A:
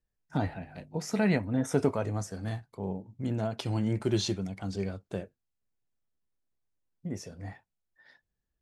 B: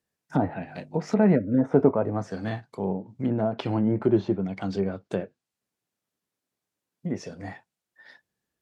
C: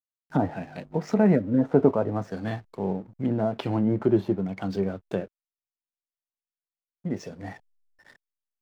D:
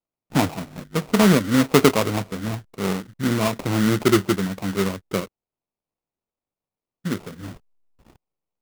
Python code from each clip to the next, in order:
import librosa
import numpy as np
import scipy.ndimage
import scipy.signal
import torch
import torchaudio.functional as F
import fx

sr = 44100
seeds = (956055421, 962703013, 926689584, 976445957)

y1 = fx.spec_erase(x, sr, start_s=1.35, length_s=0.24, low_hz=630.0, high_hz=1300.0)
y1 = scipy.signal.sosfilt(scipy.signal.butter(2, 160.0, 'highpass', fs=sr, output='sos'), y1)
y1 = fx.env_lowpass_down(y1, sr, base_hz=990.0, full_db=-28.5)
y1 = y1 * librosa.db_to_amplitude(8.0)
y2 = fx.backlash(y1, sr, play_db=-46.0)
y3 = fx.env_phaser(y2, sr, low_hz=530.0, high_hz=2500.0, full_db=-22.0)
y3 = fx.sample_hold(y3, sr, seeds[0], rate_hz=1700.0, jitter_pct=20)
y3 = y3 * librosa.db_to_amplitude(4.5)